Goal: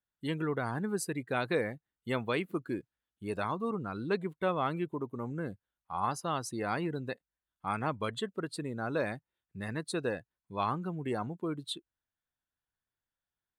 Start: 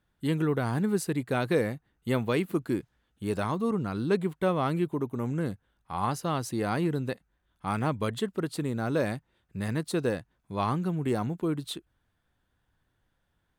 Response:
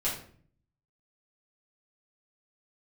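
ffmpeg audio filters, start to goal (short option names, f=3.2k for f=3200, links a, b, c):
-af "lowshelf=f=500:g=-9,afftdn=nr=16:nf=-44"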